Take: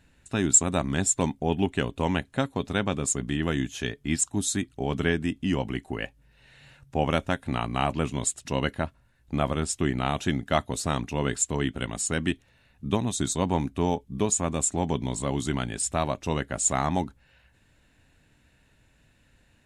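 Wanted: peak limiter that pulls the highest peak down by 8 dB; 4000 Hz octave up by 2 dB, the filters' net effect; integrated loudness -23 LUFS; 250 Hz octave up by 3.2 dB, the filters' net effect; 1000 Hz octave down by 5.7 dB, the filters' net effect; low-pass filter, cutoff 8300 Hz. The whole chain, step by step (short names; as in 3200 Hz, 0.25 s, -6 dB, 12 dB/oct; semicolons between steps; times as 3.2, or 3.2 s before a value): LPF 8300 Hz; bell 250 Hz +4.5 dB; bell 1000 Hz -8.5 dB; bell 4000 Hz +3.5 dB; gain +6 dB; limiter -10.5 dBFS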